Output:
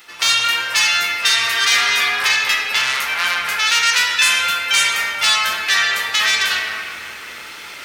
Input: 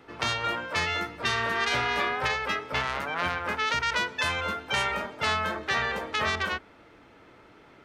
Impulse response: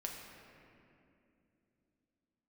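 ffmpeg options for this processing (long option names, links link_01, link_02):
-filter_complex "[0:a]areverse,acompressor=mode=upward:threshold=-30dB:ratio=2.5,areverse,crystalizer=i=8.5:c=0[link_01];[1:a]atrim=start_sample=2205[link_02];[link_01][link_02]afir=irnorm=-1:irlink=0,acontrast=73,tiltshelf=frequency=830:gain=-8,volume=-7.5dB"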